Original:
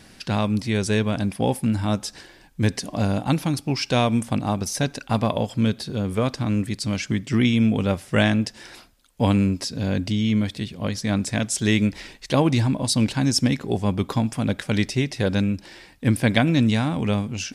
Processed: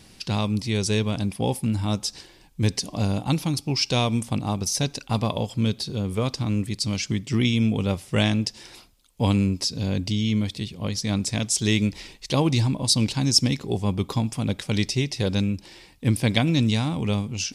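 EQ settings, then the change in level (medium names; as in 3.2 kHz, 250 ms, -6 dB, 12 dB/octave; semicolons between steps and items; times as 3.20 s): dynamic bell 5.1 kHz, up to +5 dB, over -41 dBFS, Q 1.3; fifteen-band graphic EQ 250 Hz -4 dB, 630 Hz -5 dB, 1.6 kHz -9 dB; 0.0 dB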